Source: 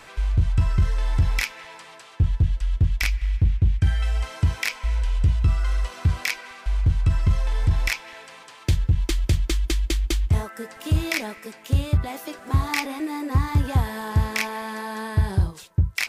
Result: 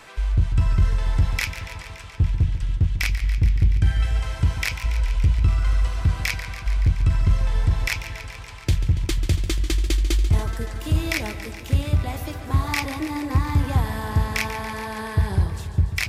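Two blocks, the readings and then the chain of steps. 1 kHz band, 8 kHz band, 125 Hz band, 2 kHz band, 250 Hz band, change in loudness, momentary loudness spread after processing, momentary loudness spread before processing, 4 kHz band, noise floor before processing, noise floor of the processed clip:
+0.5 dB, +0.5 dB, +0.5 dB, +0.5 dB, +0.5 dB, +1.0 dB, 8 LU, 9 LU, +0.5 dB, -46 dBFS, -37 dBFS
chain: warbling echo 0.142 s, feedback 75%, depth 84 cents, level -12 dB

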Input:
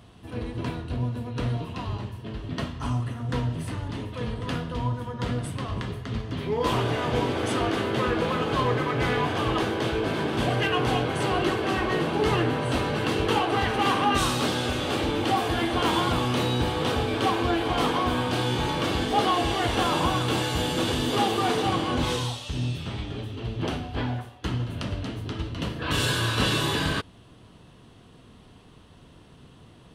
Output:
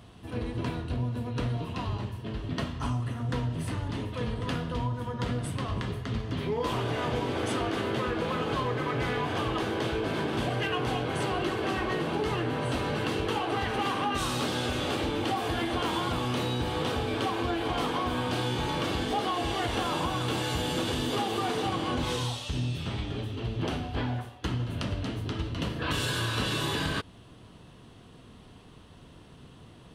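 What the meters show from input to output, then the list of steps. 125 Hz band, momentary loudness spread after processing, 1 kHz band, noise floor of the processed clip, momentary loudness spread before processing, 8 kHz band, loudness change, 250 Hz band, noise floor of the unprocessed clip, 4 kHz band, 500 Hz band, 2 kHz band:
-3.0 dB, 5 LU, -5.0 dB, -51 dBFS, 9 LU, -4.5 dB, -4.0 dB, -4.0 dB, -51 dBFS, -4.5 dB, -4.5 dB, -4.5 dB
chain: compressor, threshold -26 dBFS, peak gain reduction 8.5 dB

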